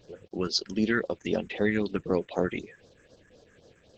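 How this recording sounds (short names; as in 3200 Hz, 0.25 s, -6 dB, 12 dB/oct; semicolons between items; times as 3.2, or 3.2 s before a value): a quantiser's noise floor 10-bit, dither none; phasing stages 4, 3.9 Hz, lowest notch 690–2200 Hz; Opus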